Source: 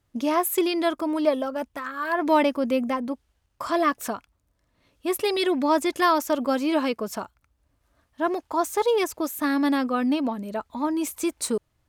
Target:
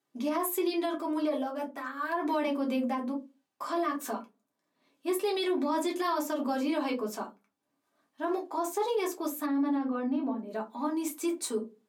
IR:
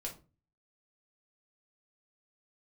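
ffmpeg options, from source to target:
-filter_complex "[0:a]highpass=frequency=190:width=0.5412,highpass=frequency=190:width=1.3066[link_01];[1:a]atrim=start_sample=2205,asetrate=70560,aresample=44100[link_02];[link_01][link_02]afir=irnorm=-1:irlink=0,alimiter=limit=-21.5dB:level=0:latency=1:release=59,asplit=3[link_03][link_04][link_05];[link_03]afade=type=out:start_time=9.45:duration=0.02[link_06];[link_04]lowpass=frequency=1000:poles=1,afade=type=in:start_time=9.45:duration=0.02,afade=type=out:start_time=10.5:duration=0.02[link_07];[link_05]afade=type=in:start_time=10.5:duration=0.02[link_08];[link_06][link_07][link_08]amix=inputs=3:normalize=0"

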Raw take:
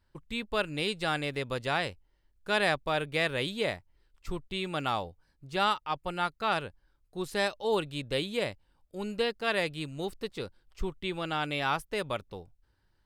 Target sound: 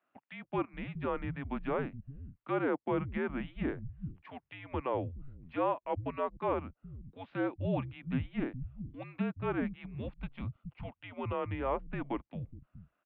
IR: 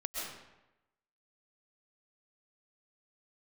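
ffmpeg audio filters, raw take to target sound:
-filter_complex "[0:a]asettb=1/sr,asplit=3[link_01][link_02][link_03];[link_01]atrim=end=10.124[link_04];[link_02]atrim=start=10.12:end=11.35,asetpts=PTS-STARTPTS,afade=type=in:duration=0.004:curve=qsin,afade=type=out:start_time=1.226:duration=0.004:curve=qsin,bandreject=frequency=2000:width=7.4[link_05];[link_03]atrim=start=11.346[link_06];[link_04][link_05]acrossfade=duration=0.004:curve1=hsin:curve2=qsin[link_07];[link_07][link_06]acrossfade=duration=0.004:curve1=qsin:curve2=hsin,acrossover=split=1300[link_08][link_09];[link_09]acompressor=threshold=-46dB:ratio=6[link_10];[link_08][link_10]amix=inputs=2:normalize=0,highpass=frequency=310:width_type=q:width=0.5412,highpass=frequency=310:width_type=q:width=1.307,lowpass=frequency=3000:width_type=q:width=0.5176,lowpass=frequency=3000:width_type=q:width=0.7071,lowpass=frequency=3000:width_type=q:width=1.932,afreqshift=-270,acrossover=split=160[link_11][link_12];[link_11]adelay=420[link_13];[link_13][link_12]amix=inputs=2:normalize=0"

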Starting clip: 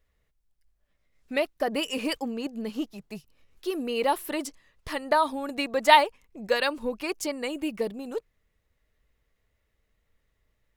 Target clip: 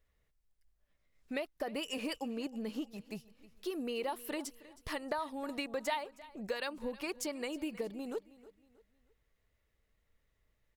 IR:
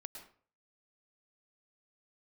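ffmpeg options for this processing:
-af "acompressor=threshold=-31dB:ratio=4,aecho=1:1:316|632|948:0.112|0.0404|0.0145,volume=-4dB"

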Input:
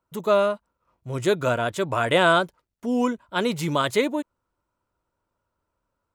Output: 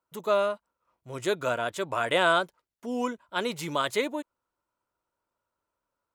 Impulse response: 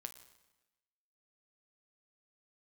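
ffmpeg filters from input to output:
-af "lowshelf=frequency=230:gain=-11.5,volume=-3.5dB"

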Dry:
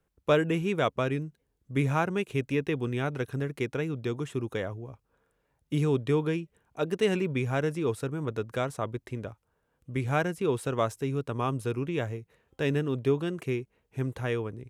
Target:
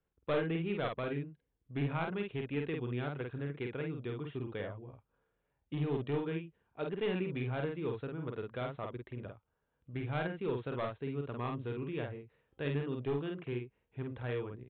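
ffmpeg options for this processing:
ffmpeg -i in.wav -filter_complex "[0:a]aresample=8000,aeval=exprs='clip(val(0),-1,0.0841)':channel_layout=same,aresample=44100,asplit=2[link_01][link_02];[link_02]adelay=49,volume=-3.5dB[link_03];[link_01][link_03]amix=inputs=2:normalize=0,volume=-9dB" out.wav

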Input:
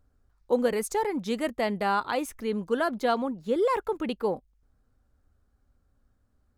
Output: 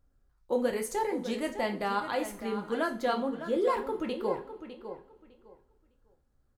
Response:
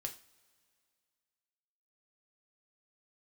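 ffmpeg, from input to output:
-filter_complex "[0:a]asplit=2[link_01][link_02];[link_02]adelay=605,lowpass=frequency=4600:poles=1,volume=-10.5dB,asplit=2[link_03][link_04];[link_04]adelay=605,lowpass=frequency=4600:poles=1,volume=0.2,asplit=2[link_05][link_06];[link_06]adelay=605,lowpass=frequency=4600:poles=1,volume=0.2[link_07];[link_01][link_03][link_05][link_07]amix=inputs=4:normalize=0[link_08];[1:a]atrim=start_sample=2205[link_09];[link_08][link_09]afir=irnorm=-1:irlink=0,volume=-1.5dB"

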